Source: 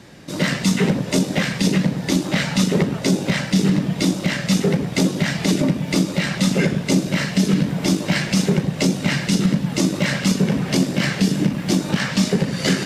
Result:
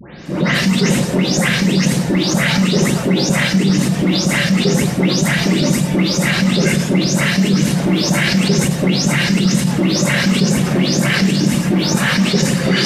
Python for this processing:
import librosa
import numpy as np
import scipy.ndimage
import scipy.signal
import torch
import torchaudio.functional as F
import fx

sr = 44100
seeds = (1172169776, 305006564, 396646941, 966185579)

p1 = fx.spec_delay(x, sr, highs='late', ms=258)
p2 = fx.over_compress(p1, sr, threshold_db=-24.0, ratio=-1.0)
p3 = p1 + F.gain(torch.from_numpy(p2), -0.5).numpy()
y = F.gain(torch.from_numpy(p3), 1.5).numpy()